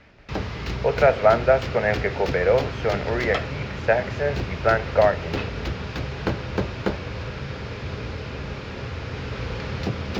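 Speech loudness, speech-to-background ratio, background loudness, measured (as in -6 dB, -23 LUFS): -22.5 LUFS, 7.5 dB, -30.0 LUFS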